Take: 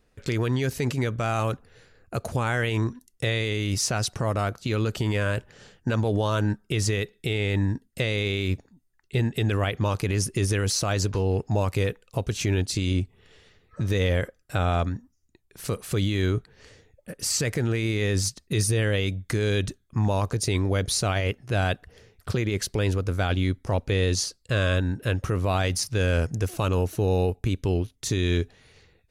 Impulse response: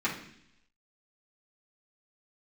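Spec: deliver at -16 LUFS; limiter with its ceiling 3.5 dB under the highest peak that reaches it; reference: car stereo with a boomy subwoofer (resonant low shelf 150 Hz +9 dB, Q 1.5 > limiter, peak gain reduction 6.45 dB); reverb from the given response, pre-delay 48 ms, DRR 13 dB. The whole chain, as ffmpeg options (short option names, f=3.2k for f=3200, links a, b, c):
-filter_complex "[0:a]alimiter=limit=-18.5dB:level=0:latency=1,asplit=2[a][b];[1:a]atrim=start_sample=2205,adelay=48[c];[b][c]afir=irnorm=-1:irlink=0,volume=-22dB[d];[a][d]amix=inputs=2:normalize=0,lowshelf=f=150:t=q:w=1.5:g=9,volume=8dB,alimiter=limit=-7dB:level=0:latency=1"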